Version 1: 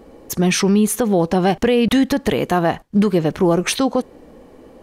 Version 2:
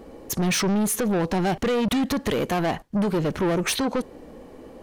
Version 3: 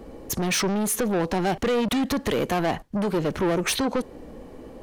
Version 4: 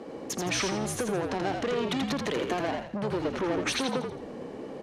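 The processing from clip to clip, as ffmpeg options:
-af "asoftclip=type=tanh:threshold=0.106"
-filter_complex "[0:a]acrossover=split=250[s0][s1];[s0]acompressor=threshold=0.02:ratio=6[s2];[s2][s1]amix=inputs=2:normalize=0,lowshelf=f=150:g=6"
-filter_complex "[0:a]acompressor=threshold=0.0316:ratio=4,highpass=240,lowpass=6800,asplit=2[s0][s1];[s1]asplit=5[s2][s3][s4][s5][s6];[s2]adelay=83,afreqshift=-57,volume=0.596[s7];[s3]adelay=166,afreqshift=-114,volume=0.232[s8];[s4]adelay=249,afreqshift=-171,volume=0.0902[s9];[s5]adelay=332,afreqshift=-228,volume=0.0355[s10];[s6]adelay=415,afreqshift=-285,volume=0.0138[s11];[s7][s8][s9][s10][s11]amix=inputs=5:normalize=0[s12];[s0][s12]amix=inputs=2:normalize=0,volume=1.33"

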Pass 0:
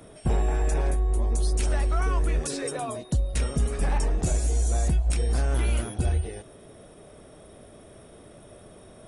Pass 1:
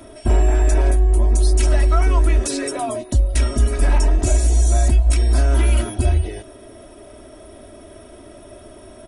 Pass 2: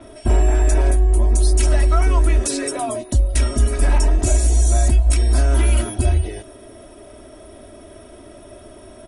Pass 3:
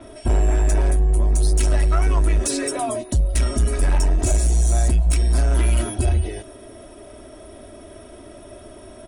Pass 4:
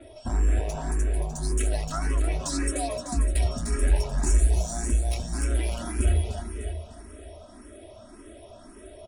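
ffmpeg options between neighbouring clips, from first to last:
-af "aecho=1:1:3.1:0.99,volume=1.68"
-af "adynamicequalizer=threshold=0.00708:dfrequency=7100:dqfactor=0.7:tfrequency=7100:tqfactor=0.7:attack=5:release=100:ratio=0.375:range=2:mode=boostabove:tftype=highshelf"
-af "asoftclip=type=tanh:threshold=0.282"
-filter_complex "[0:a]flanger=delay=3.5:depth=1.5:regen=-62:speed=0.38:shape=triangular,asplit=2[s0][s1];[s1]aecho=0:1:301|602|903|1204|1505|1806:0.596|0.268|0.121|0.0543|0.0244|0.011[s2];[s0][s2]amix=inputs=2:normalize=0,asplit=2[s3][s4];[s4]afreqshift=1.8[s5];[s3][s5]amix=inputs=2:normalize=1"

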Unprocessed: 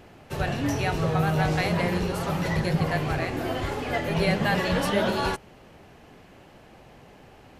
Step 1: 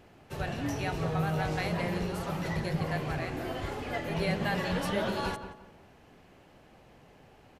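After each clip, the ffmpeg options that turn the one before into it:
-filter_complex "[0:a]asplit=2[s0][s1];[s1]adelay=176,lowpass=f=1800:p=1,volume=0.335,asplit=2[s2][s3];[s3]adelay=176,lowpass=f=1800:p=1,volume=0.32,asplit=2[s4][s5];[s5]adelay=176,lowpass=f=1800:p=1,volume=0.32,asplit=2[s6][s7];[s7]adelay=176,lowpass=f=1800:p=1,volume=0.32[s8];[s0][s2][s4][s6][s8]amix=inputs=5:normalize=0,volume=0.447"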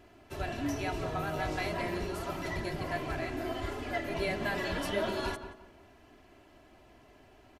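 -af "aecho=1:1:3:0.65,volume=0.75"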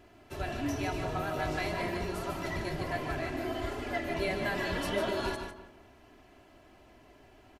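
-af "aecho=1:1:149:0.422"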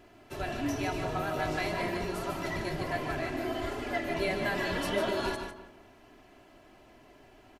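-af "equalizer=f=67:t=o:w=0.68:g=-9,volume=1.19"

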